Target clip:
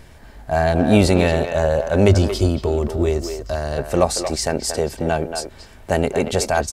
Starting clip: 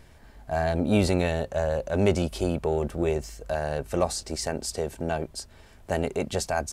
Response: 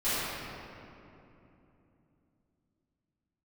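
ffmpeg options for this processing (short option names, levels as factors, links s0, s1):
-filter_complex "[0:a]asettb=1/sr,asplit=3[s0][s1][s2];[s0]atrim=end=2.084[s3];[s1]atrim=start=2.08:end=3.78,asetpts=PTS-STARTPTS,afade=t=in:d=0.004:c=qsin,afade=t=out:st=1.696:d=0.004:c=qsin,equalizer=f=100:t=o:w=0.33:g=12,equalizer=f=160:t=o:w=0.33:g=-8,equalizer=f=500:t=o:w=0.33:g=-9,equalizer=f=800:t=o:w=0.33:g=-9,equalizer=f=1600:t=o:w=0.33:g=-6,equalizer=f=2500:t=o:w=0.33:g=-7,equalizer=f=5000:t=o:w=0.33:g=5,equalizer=f=10000:t=o:w=0.33:g=-4[s4];[s2]atrim=start=3.776[s5];[s3][s4]acrossfade=d=0.004:c1=hsin:c2=qsin[s6];[s6][s5]acrossfade=d=0.004:c1=qsin:c2=hsin,asplit=2[s7][s8];[s8]adelay=230,highpass=300,lowpass=3400,asoftclip=type=hard:threshold=0.119,volume=0.447[s9];[s7][s9]amix=inputs=2:normalize=0,volume=2.51"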